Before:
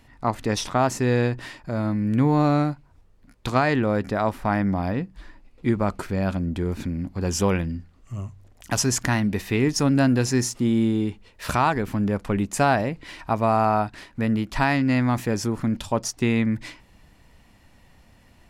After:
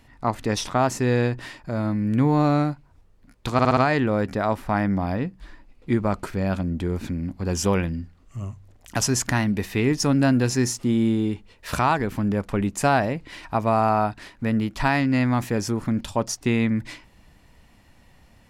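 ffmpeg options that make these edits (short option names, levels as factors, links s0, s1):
-filter_complex "[0:a]asplit=5[s0][s1][s2][s3][s4];[s0]atrim=end=3.592[s5];[s1]atrim=start=3.528:end=3.592[s6];[s2]atrim=start=3.528:end=3.592[s7];[s3]atrim=start=3.528:end=3.592[s8];[s4]atrim=start=3.528[s9];[s5][s6]acrossfade=d=0.004:c1=hsin:c2=hsin[s10];[s10][s7]acrossfade=d=0.004:c1=hsin:c2=hsin[s11];[s11][s8]acrossfade=d=0.004:c1=hsin:c2=hsin[s12];[s12][s9]acrossfade=d=0.004:c1=hsin:c2=hsin"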